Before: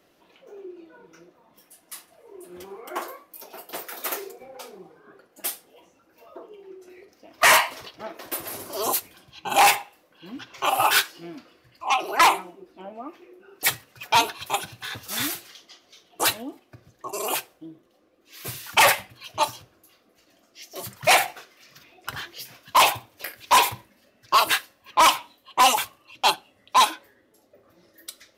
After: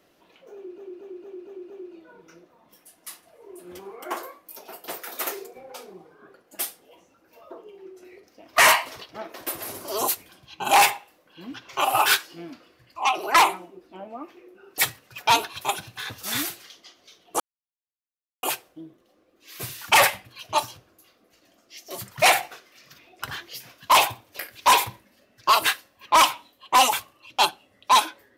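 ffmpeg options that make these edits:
-filter_complex "[0:a]asplit=8[s0][s1][s2][s3][s4][s5][s6][s7];[s0]atrim=end=0.782[s8];[s1]atrim=start=0.548:end=0.782[s9];[s2]atrim=start=0.548:end=0.782[s10];[s3]atrim=start=0.548:end=0.782[s11];[s4]atrim=start=0.548:end=0.782[s12];[s5]atrim=start=0.548:end=16.25,asetpts=PTS-STARTPTS,afade=t=out:st=15.698:d=0.004:c=hsin[s13];[s6]atrim=start=16.25:end=17.28,asetpts=PTS-STARTPTS,volume=0[s14];[s7]atrim=start=17.28,asetpts=PTS-STARTPTS,afade=t=in:d=0.004:c=hsin[s15];[s8][s9]acrossfade=d=0.004:c1=hsin:c2=hsin[s16];[s16][s10]acrossfade=d=0.004:c1=hsin:c2=hsin[s17];[s17][s11]acrossfade=d=0.004:c1=hsin:c2=hsin[s18];[s18][s12]acrossfade=d=0.004:c1=hsin:c2=hsin[s19];[s13][s14][s15]concat=n=3:v=0:a=1[s20];[s19][s20]acrossfade=d=0.004:c1=hsin:c2=hsin"

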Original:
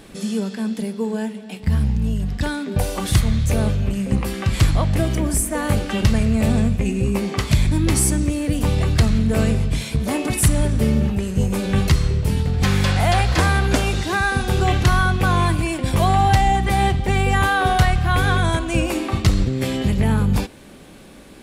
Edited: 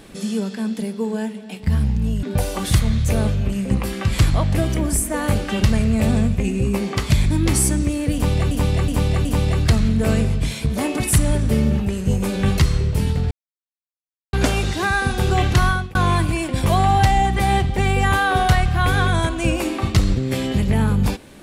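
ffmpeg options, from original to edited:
-filter_complex "[0:a]asplit=8[s0][s1][s2][s3][s4][s5][s6][s7];[s0]atrim=end=2.232[s8];[s1]atrim=start=2.638:end=8.922[s9];[s2]atrim=start=8.548:end=8.922[s10];[s3]atrim=start=8.548:end=8.922[s11];[s4]atrim=start=8.548:end=12.61,asetpts=PTS-STARTPTS,afade=t=out:st=4.058:d=0.004:c=hsin[s12];[s5]atrim=start=12.61:end=13.63,asetpts=PTS-STARTPTS,volume=0[s13];[s6]atrim=start=13.63:end=15.25,asetpts=PTS-STARTPTS,afade=t=in:d=0.004:c=hsin,afade=t=out:st=1.34:d=0.28[s14];[s7]atrim=start=15.25,asetpts=PTS-STARTPTS,afade=t=in:d=0.004:c=hsin[s15];[s8][s9]acrossfade=d=0.004:c1=hsin:c2=hsin[s16];[s16][s10]acrossfade=d=0.004:c1=hsin:c2=hsin[s17];[s17][s11]acrossfade=d=0.004:c1=hsin:c2=hsin[s18];[s12][s13][s14][s15]concat=n=4:v=0:a=1[s19];[s18][s19]acrossfade=d=0.004:c1=hsin:c2=hsin"

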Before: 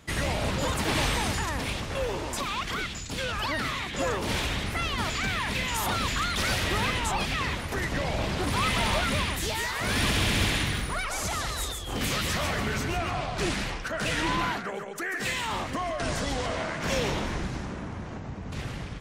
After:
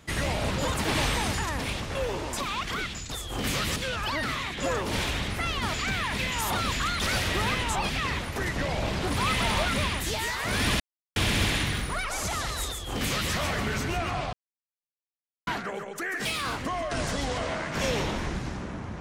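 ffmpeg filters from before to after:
-filter_complex "[0:a]asplit=8[s0][s1][s2][s3][s4][s5][s6][s7];[s0]atrim=end=3.122[s8];[s1]atrim=start=11.688:end=12.332[s9];[s2]atrim=start=3.118:end=10.16,asetpts=PTS-STARTPTS,afade=t=out:st=7.038:d=0.004:c=hsin,apad=pad_dur=0.36[s10];[s3]atrim=start=10.16:end=13.33,asetpts=PTS-STARTPTS,afade=t=in:d=0.004:c=hsin,afade=t=out:st=3.166:d=0.004:c=hsin[s11];[s4]atrim=start=13.33:end=14.47,asetpts=PTS-STARTPTS,volume=0[s12];[s5]atrim=start=14.47:end=15.254,asetpts=PTS-STARTPTS,afade=t=in:d=0.004:c=hsin[s13];[s6]atrim=start=15.25:end=15.66,asetpts=PTS-STARTPTS,asetrate=55566,aresample=44100[s14];[s7]atrim=start=15.656[s15];[s8][s9]acrossfade=d=0.004:c1=hsin:c2=hsin[s16];[s10][s11][s12][s13]concat=n=4:v=0:a=1[s17];[s16][s17]acrossfade=d=0.004:c1=hsin:c2=hsin[s18];[s18][s14]acrossfade=d=0.004:c1=hsin:c2=hsin[s19];[s19][s15]acrossfade=d=0.004:c1=hsin:c2=hsin"

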